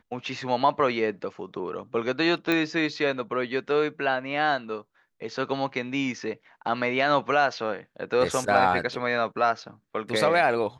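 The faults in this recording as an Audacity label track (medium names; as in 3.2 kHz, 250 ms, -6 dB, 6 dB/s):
2.520000	2.520000	pop -12 dBFS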